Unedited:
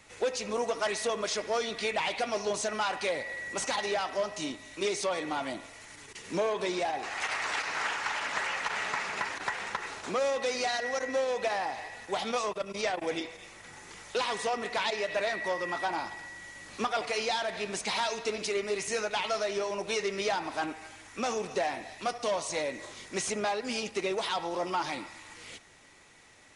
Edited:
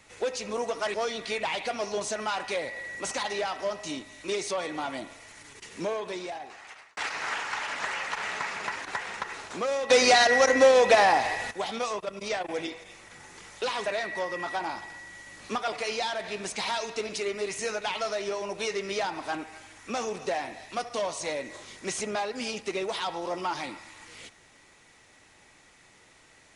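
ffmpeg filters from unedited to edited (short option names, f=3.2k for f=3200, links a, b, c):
-filter_complex "[0:a]asplit=6[a][b][c][d][e][f];[a]atrim=end=0.942[g];[b]atrim=start=1.468:end=7.5,asetpts=PTS-STARTPTS,afade=t=out:st=4.722:d=1.31[h];[c]atrim=start=7.5:end=10.432,asetpts=PTS-STARTPTS,afade=t=in:d=0.004:c=hsin[i];[d]atrim=start=10.428:end=12.042,asetpts=PTS-STARTPTS,volume=11.5dB[j];[e]atrim=start=12.038:end=14.392[k];[f]atrim=start=15.148[l];[h][i]concat=n=2:v=0:a=1[m];[g][m]acrossfade=d=0.004:c1=hsin:c2=hsin[n];[n][j]acrossfade=d=0.004:c1=hsin:c2=hsin[o];[o][k]acrossfade=d=0.004:c1=hsin:c2=hsin[p];[p][l]acrossfade=d=0.004:c1=hsin:c2=hsin"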